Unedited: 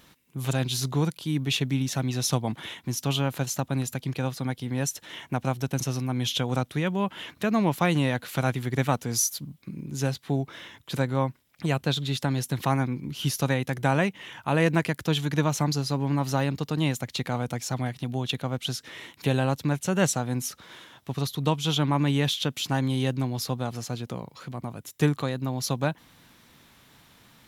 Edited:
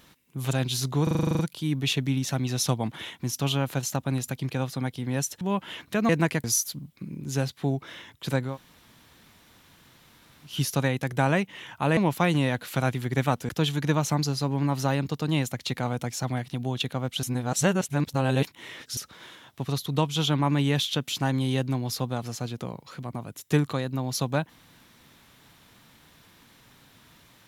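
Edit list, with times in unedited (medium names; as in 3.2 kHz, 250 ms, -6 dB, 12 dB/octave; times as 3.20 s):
1.03 s: stutter 0.04 s, 10 plays
5.05–6.90 s: delete
7.58–9.10 s: swap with 14.63–14.98 s
11.16–13.16 s: room tone, crossfade 0.16 s
18.72–20.46 s: reverse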